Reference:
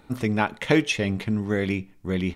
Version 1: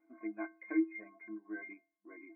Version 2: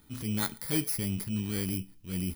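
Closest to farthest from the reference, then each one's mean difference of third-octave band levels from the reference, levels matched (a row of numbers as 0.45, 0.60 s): 2, 1; 9.0, 15.0 dB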